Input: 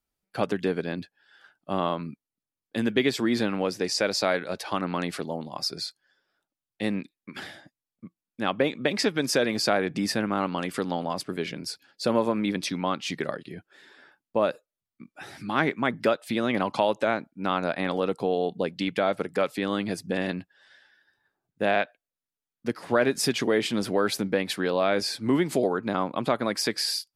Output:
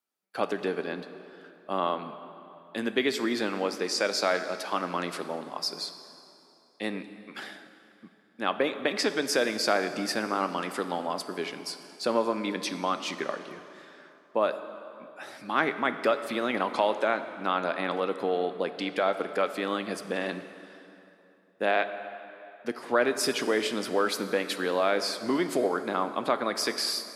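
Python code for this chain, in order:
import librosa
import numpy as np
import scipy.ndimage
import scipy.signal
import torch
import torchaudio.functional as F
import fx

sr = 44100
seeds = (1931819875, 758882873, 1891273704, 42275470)

y = scipy.signal.sosfilt(scipy.signal.butter(2, 270.0, 'highpass', fs=sr, output='sos'), x)
y = fx.peak_eq(y, sr, hz=1200.0, db=3.0, octaves=0.77)
y = fx.rev_plate(y, sr, seeds[0], rt60_s=3.0, hf_ratio=0.75, predelay_ms=0, drr_db=9.5)
y = y * librosa.db_to_amplitude(-2.0)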